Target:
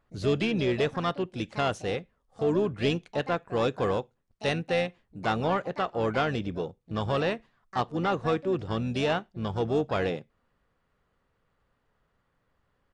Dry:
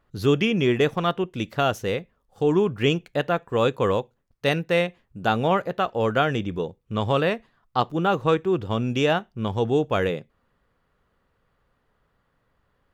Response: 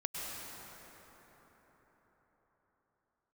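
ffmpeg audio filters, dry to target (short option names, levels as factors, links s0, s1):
-filter_complex "[0:a]asoftclip=type=tanh:threshold=0.251,asplit=3[s0][s1][s2];[s1]asetrate=29433,aresample=44100,atempo=1.49831,volume=0.141[s3];[s2]asetrate=66075,aresample=44100,atempo=0.66742,volume=0.251[s4];[s0][s3][s4]amix=inputs=3:normalize=0,aresample=22050,aresample=44100,volume=0.596"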